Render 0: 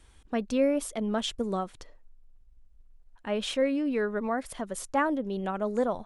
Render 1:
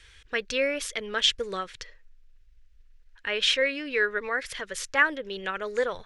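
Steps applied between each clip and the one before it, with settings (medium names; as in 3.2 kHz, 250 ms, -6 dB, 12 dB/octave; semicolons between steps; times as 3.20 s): FFT filter 140 Hz 0 dB, 220 Hz -15 dB, 480 Hz +3 dB, 690 Hz -9 dB, 1.2 kHz +2 dB, 1.7 kHz +14 dB, 5.7 kHz +10 dB, 9.4 kHz -1 dB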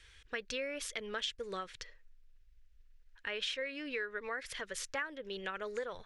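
compression 6:1, threshold -29 dBFS, peak gain reduction 13 dB; trim -6 dB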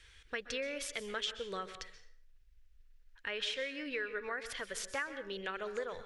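plate-style reverb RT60 0.54 s, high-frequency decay 0.85×, pre-delay 115 ms, DRR 11 dB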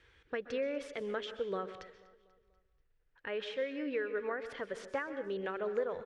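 band-pass filter 360 Hz, Q 0.57; feedback delay 243 ms, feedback 50%, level -20 dB; trim +6 dB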